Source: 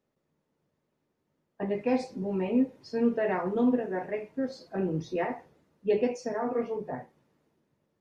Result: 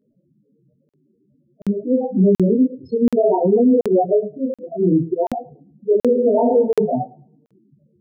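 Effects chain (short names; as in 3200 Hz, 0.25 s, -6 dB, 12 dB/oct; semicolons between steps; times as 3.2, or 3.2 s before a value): Wiener smoothing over 15 samples; 4.61–5.27 HPF 150 Hz 24 dB/oct; auto swell 0.225 s; compressor 6:1, threshold -28 dBFS, peak gain reduction 7.5 dB; loudest bins only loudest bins 4; chorus voices 2, 0.53 Hz, delay 19 ms, depth 4.9 ms; darkening echo 0.108 s, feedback 21%, low-pass 4800 Hz, level -22 dB; 5.94–6.43 reverb throw, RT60 0.88 s, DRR 5.5 dB; maximiser +31.5 dB; crackling interface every 0.73 s, samples 2048, zero, from 0.89; gain -6.5 dB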